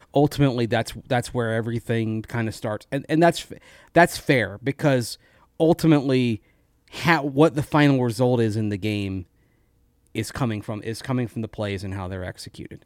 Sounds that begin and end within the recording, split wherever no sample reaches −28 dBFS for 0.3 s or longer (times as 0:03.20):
0:03.95–0:05.13
0:05.60–0:06.36
0:06.95–0:09.21